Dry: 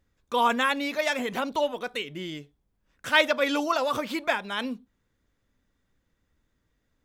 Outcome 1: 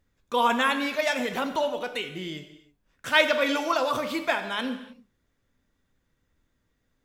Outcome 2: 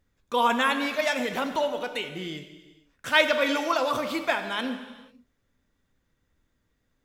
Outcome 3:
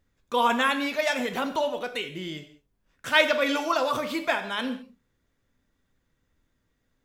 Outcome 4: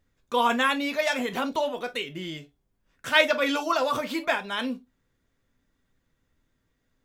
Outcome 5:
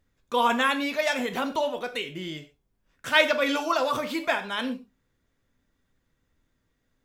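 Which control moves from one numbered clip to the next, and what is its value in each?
reverb whose tail is shaped and stops, gate: 340, 520, 230, 80, 150 milliseconds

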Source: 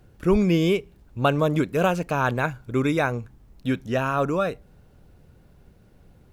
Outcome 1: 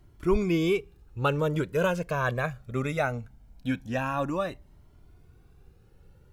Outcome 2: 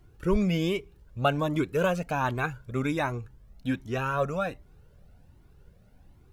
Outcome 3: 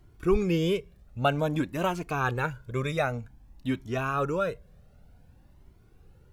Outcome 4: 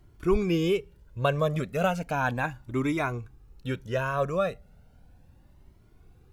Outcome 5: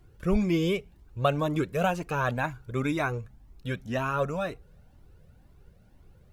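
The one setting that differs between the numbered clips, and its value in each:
flanger whose copies keep moving one way, speed: 0.21, 1.3, 0.53, 0.35, 2 Hertz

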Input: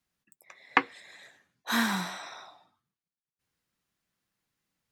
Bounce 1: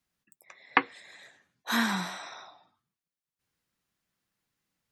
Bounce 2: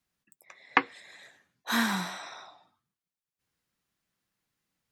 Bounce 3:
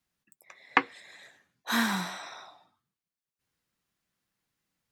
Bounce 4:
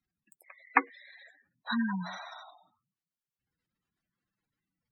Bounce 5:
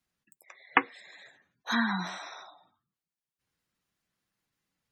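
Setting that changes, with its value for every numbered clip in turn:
gate on every frequency bin, under each frame's peak: −35, −45, −60, −10, −20 decibels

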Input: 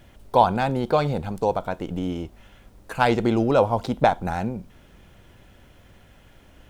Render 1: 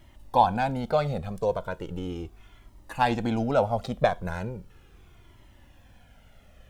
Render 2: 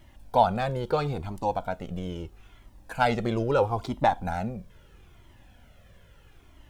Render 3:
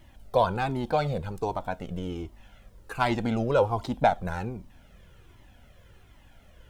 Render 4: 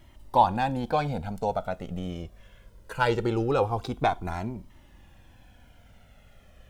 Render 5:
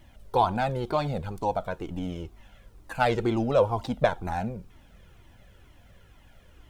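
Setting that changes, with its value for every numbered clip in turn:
flanger whose copies keep moving one way, speed: 0.37, 0.76, 1.3, 0.22, 2.1 Hertz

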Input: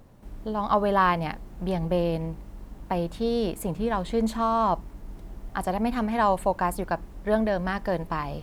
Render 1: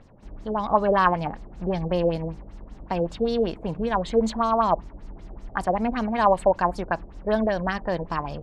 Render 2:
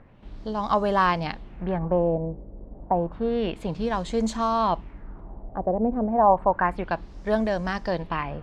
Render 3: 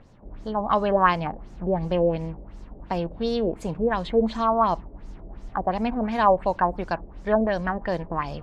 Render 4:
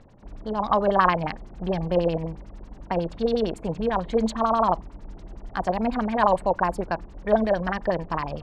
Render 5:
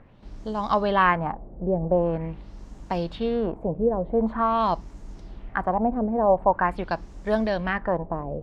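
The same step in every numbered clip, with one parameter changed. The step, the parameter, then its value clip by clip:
auto-filter low-pass, speed: 5.2, 0.3, 2.8, 11, 0.45 Hertz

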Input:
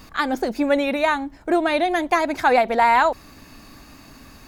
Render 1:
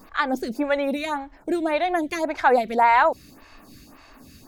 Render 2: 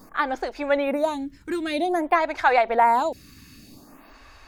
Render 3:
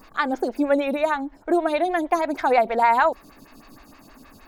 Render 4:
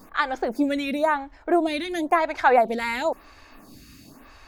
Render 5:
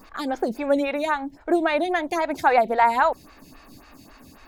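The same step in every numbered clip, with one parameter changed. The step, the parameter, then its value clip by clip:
phaser with staggered stages, speed: 1.8, 0.52, 6.4, 0.97, 3.7 Hertz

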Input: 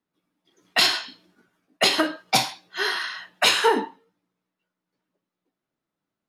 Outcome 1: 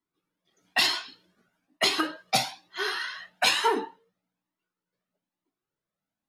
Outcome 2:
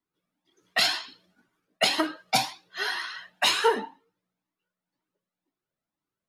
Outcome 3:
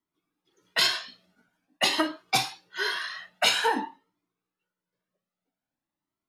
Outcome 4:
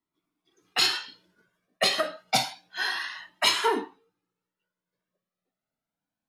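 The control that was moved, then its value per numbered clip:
flanger whose copies keep moving one way, speed: 1.1, 2, 0.49, 0.29 Hertz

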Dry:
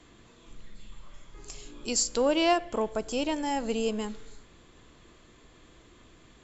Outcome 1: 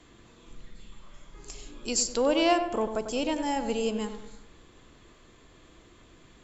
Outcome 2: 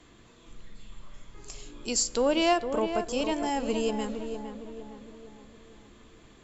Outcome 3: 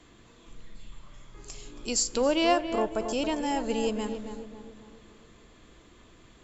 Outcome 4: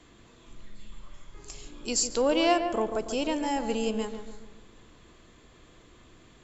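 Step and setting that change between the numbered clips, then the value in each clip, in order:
feedback echo with a low-pass in the loop, delay time: 97, 459, 275, 143 milliseconds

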